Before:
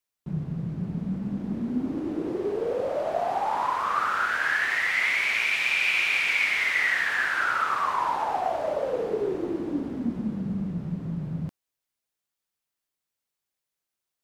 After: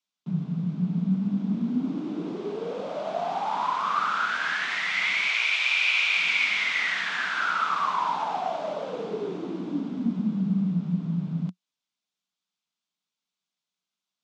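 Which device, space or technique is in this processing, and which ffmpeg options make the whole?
television speaker: -filter_complex "[0:a]asettb=1/sr,asplit=3[s0][s1][s2];[s0]atrim=end=5.284[s3];[s1]atrim=start=5.28:end=6.17,asetpts=PTS-STARTPTS,afade=t=in:d=0.004:c=qsin,afade=t=out:st=0.886:d=0.004:c=qsin,highpass=f=390:w=0.5412,highpass=f=390:w=1.3066[s4];[s2]atrim=start=6.166[s5];[s3][s4]acrossfade=d=0.004:c1=hsin:c2=qsin[s6];[s6][s5]acrossfade=d=0.004:c1=qsin:c2=hsin,highpass=f=170:w=0.5412,highpass=f=170:w=1.3066,equalizer=f=180:t=q:w=4:g=8,equalizer=f=360:t=q:w=4:g=-8,equalizer=f=530:t=q:w=4:g=-9,equalizer=f=800:t=q:w=4:g=-3,equalizer=f=1800:t=q:w=4:g=-8,equalizer=f=3500:t=q:w=4:g=5,lowpass=f=6900:w=0.5412,lowpass=f=6900:w=1.3066,volume=1.19"

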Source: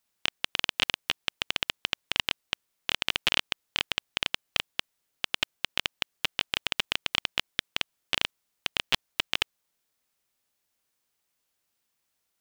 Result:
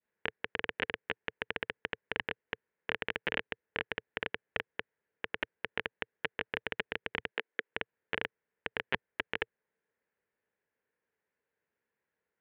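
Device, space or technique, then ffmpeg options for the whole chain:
bass cabinet: -filter_complex "[0:a]asettb=1/sr,asplit=3[s0][s1][s2];[s0]atrim=end=7.314[s3];[s1]atrim=start=7.31:end=7.71,asetpts=PTS-STARTPTS,afade=t=in:d=0.004:c=qsin,afade=t=out:st=0.396:d=0.004:c=qsin,highpass=f=260:w=0.5412,highpass=f=260:w=1.3066[s4];[s2]atrim=start=7.706[s5];[s3][s4]acrossfade=d=0.004:c1=hsin:c2=qsin[s6];[s6][s5]acrossfade=d=0.004:c1=qsin:c2=hsin,adynamicequalizer=threshold=0.00631:dfrequency=1100:dqfactor=1.1:tfrequency=1100:tqfactor=1.1:attack=5:release=100:ratio=0.375:range=2:mode=cutabove:tftype=bell,highpass=83,equalizer=f=120:t=q:w=4:g=-6,equalizer=f=290:t=q:w=4:g=-4,equalizer=f=450:t=q:w=4:g=9,equalizer=f=720:t=q:w=4:g=-6,equalizer=f=1200:t=q:w=4:g=-8,equalizer=f=1700:t=q:w=4:g=5,lowpass=f=2000:w=0.5412,lowpass=f=2000:w=1.3066"

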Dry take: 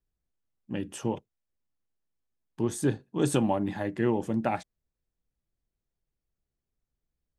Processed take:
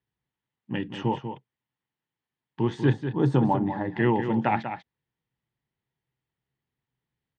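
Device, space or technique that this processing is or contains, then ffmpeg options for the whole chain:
guitar cabinet: -filter_complex "[0:a]asettb=1/sr,asplit=3[s0][s1][s2];[s0]atrim=end=2.934[s3];[s1]atrim=start=2.93:end=3.96,asetpts=PTS-STARTPTS,afade=t=in:d=0.004:c=qsin,afade=t=out:st=1.026:d=0.004:c=qsin,equalizer=f=2800:w=0.98:g=-15[s4];[s2]atrim=start=3.956[s5];[s3][s4]acrossfade=d=0.004:c1=hsin:c2=qsin[s6];[s6][s5]acrossfade=d=0.004:c1=qsin:c2=hsin,highpass=110,equalizer=f=130:t=q:w=4:g=9,equalizer=f=600:t=q:w=4:g=-5,equalizer=f=910:t=q:w=4:g=8,equalizer=f=1900:t=q:w=4:g=8,equalizer=f=3100:t=q:w=4:g=5,lowpass=f=4100:w=0.5412,lowpass=f=4100:w=1.3066,aecho=1:1:193:0.355,volume=1.33"

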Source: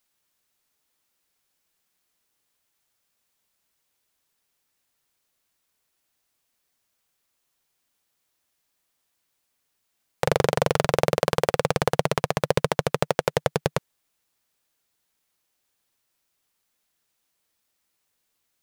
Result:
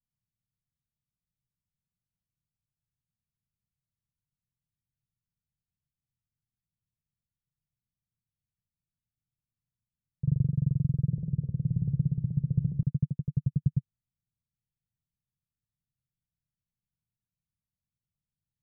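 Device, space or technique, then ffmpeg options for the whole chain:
the neighbour's flat through the wall: -filter_complex "[0:a]lowpass=f=170:w=0.5412,lowpass=f=170:w=1.3066,equalizer=f=130:t=o:w=0.91:g=6.5,asettb=1/sr,asplit=3[s0][s1][s2];[s0]atrim=end=11.084[s3];[s1]atrim=start=11.08:end=12.83,asetpts=PTS-STARTPTS,afade=t=in:d=0.004:c=qsin,afade=t=out:st=1.746:d=0.004:c=qsin,bandreject=f=70.98:t=h:w=4,bandreject=f=141.96:t=h:w=4,bandreject=f=212.94:t=h:w=4,bandreject=f=283.92:t=h:w=4,bandreject=f=354.9:t=h:w=4,bandreject=f=425.88:t=h:w=4,bandreject=f=496.86:t=h:w=4[s4];[s2]atrim=start=12.826[s5];[s3][s4]acrossfade=d=0.004:c1=hsin:c2=qsin[s6];[s6][s5]acrossfade=d=0.004:c1=qsin:c2=hsin"

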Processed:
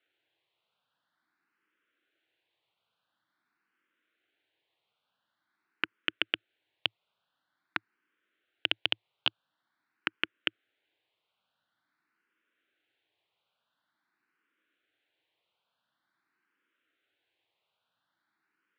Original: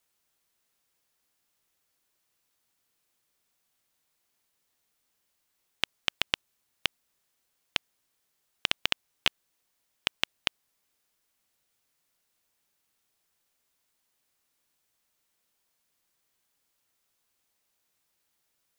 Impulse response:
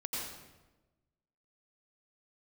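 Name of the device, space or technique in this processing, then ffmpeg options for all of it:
barber-pole phaser into a guitar amplifier: -filter_complex "[0:a]highpass=f=230:p=1,highshelf=f=4500:t=q:w=1.5:g=-8.5,asplit=2[s0][s1];[s1]afreqshift=0.47[s2];[s0][s2]amix=inputs=2:normalize=1,asoftclip=type=tanh:threshold=0.237,highpass=100,equalizer=f=110:t=q:w=4:g=6,equalizer=f=320:t=q:w=4:g=8,equalizer=f=1500:t=q:w=4:g=8,lowpass=f=4100:w=0.5412,lowpass=f=4100:w=1.3066,volume=1.33"

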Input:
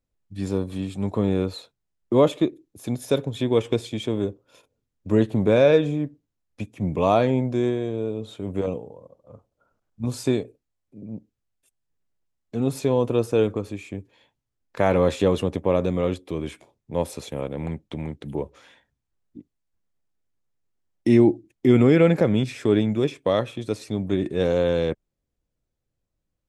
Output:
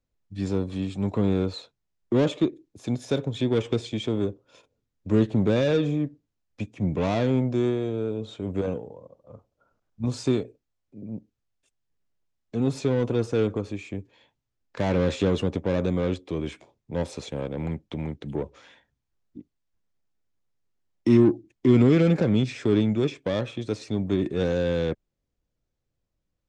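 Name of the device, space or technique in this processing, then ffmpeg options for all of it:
one-band saturation: -filter_complex "[0:a]acrossover=split=370|3300[s0][s1][s2];[s1]asoftclip=type=tanh:threshold=0.0422[s3];[s0][s3][s2]amix=inputs=3:normalize=0,lowpass=f=7300:w=0.5412,lowpass=f=7300:w=1.3066"

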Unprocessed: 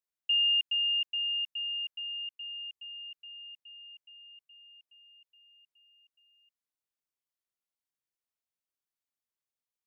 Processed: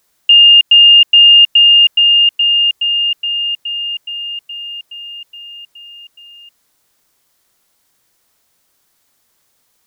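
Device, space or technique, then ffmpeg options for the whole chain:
mastering chain: -af "equalizer=f=2600:t=o:w=0.53:g=-3.5,acompressor=threshold=0.0112:ratio=1.5,alimiter=level_in=44.7:limit=0.891:release=50:level=0:latency=1,volume=0.891"

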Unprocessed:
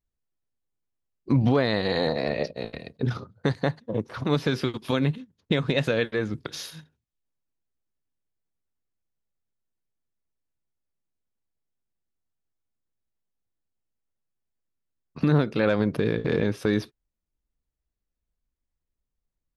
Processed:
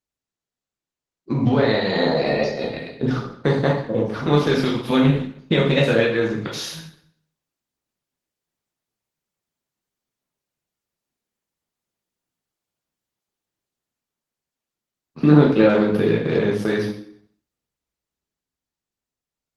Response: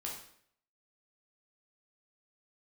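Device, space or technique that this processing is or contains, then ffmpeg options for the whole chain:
far-field microphone of a smart speaker: -filter_complex "[0:a]asettb=1/sr,asplit=3[s0][s1][s2];[s0]atrim=end=15.194[s3];[s1]atrim=start=15.19:end=15.81,asetpts=PTS-STARTPTS,afade=t=in:d=0.004:c=qsin,afade=t=out:st=0.616:d=0.004:c=qsin,equalizer=f=330:t=o:w=1.1:g=5.5[s4];[s2]atrim=start=15.806[s5];[s3][s4]acrossfade=d=0.004:c1=hsin:c2=qsin[s6];[s6][s5]acrossfade=d=0.004:c1=qsin:c2=hsin[s7];[1:a]atrim=start_sample=2205[s8];[s7][s8]afir=irnorm=-1:irlink=0,highpass=120,dynaudnorm=f=110:g=31:m=2.51,volume=1.12" -ar 48000 -c:a libopus -b:a 16k

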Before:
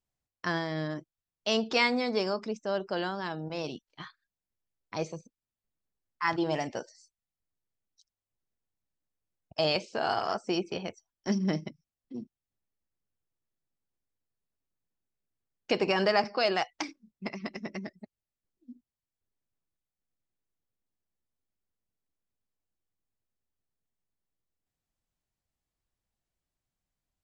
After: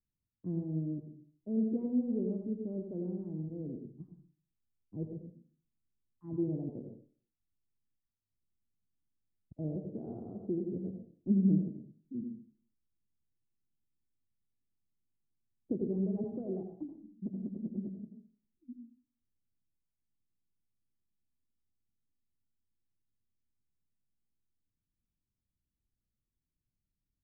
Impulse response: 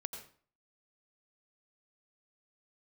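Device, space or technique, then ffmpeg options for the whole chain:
next room: -filter_complex "[0:a]lowpass=f=320:w=0.5412,lowpass=f=320:w=1.3066[s0];[1:a]atrim=start_sample=2205[s1];[s0][s1]afir=irnorm=-1:irlink=0,asettb=1/sr,asplit=3[s2][s3][s4];[s2]atrim=end=15.764[s5];[s3]atrim=start=15.76:end=16.18,asetpts=PTS-STARTPTS,afade=t=in:d=0.004:c=qsin,afade=t=out:st=0.416:d=0.004:c=qsin,equalizer=f=840:w=0.54:g=-4.5[s6];[s4]atrim=start=16.176[s7];[s5][s6]acrossfade=d=0.004:c1=hsin:c2=qsin[s8];[s8][s7]acrossfade=d=0.004:c1=qsin:c2=hsin,volume=1.5"

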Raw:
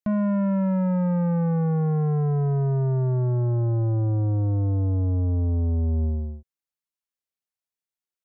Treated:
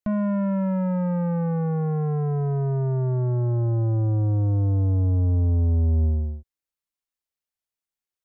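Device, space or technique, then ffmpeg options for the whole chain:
low shelf boost with a cut just above: -af "lowshelf=f=97:g=7,equalizer=f=150:t=o:w=0.99:g=-4"

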